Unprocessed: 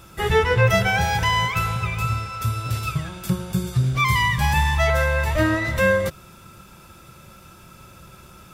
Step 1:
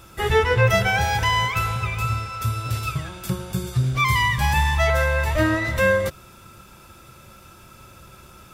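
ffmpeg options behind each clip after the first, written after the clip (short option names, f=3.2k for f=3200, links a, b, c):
-af "equalizer=f=170:t=o:w=0.32:g=-7"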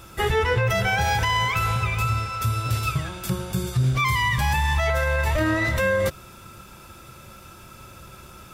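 -af "alimiter=limit=-15.5dB:level=0:latency=1:release=59,volume=2dB"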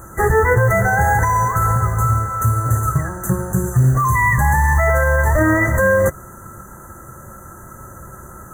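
-af "acrusher=bits=6:mode=log:mix=0:aa=0.000001,afftfilt=real='re*(1-between(b*sr/4096,2000,6000))':imag='im*(1-between(b*sr/4096,2000,6000))':win_size=4096:overlap=0.75,volume=7.5dB"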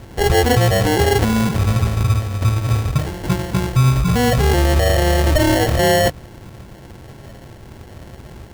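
-af "acrusher=samples=36:mix=1:aa=0.000001"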